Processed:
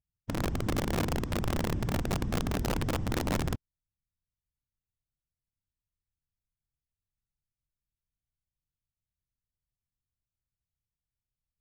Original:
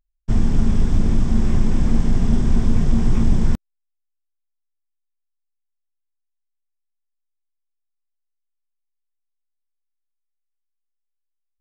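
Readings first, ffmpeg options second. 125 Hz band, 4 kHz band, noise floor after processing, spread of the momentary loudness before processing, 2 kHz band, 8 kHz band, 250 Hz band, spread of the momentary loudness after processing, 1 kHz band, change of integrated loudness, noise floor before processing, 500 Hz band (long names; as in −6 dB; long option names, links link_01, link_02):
−11.5 dB, +1.5 dB, below −85 dBFS, 3 LU, +1.5 dB, can't be measured, −11.5 dB, 3 LU, +0.5 dB, −11.0 dB, −76 dBFS, −1.5 dB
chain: -af "afftfilt=real='hypot(re,im)*cos(2*PI*random(0))':imag='hypot(re,im)*sin(2*PI*random(1))':win_size=512:overlap=0.75,lowpass=frequency=3400:poles=1,aeval=exprs='(mod(5.96*val(0)+1,2)-1)/5.96':channel_layout=same,volume=-8dB"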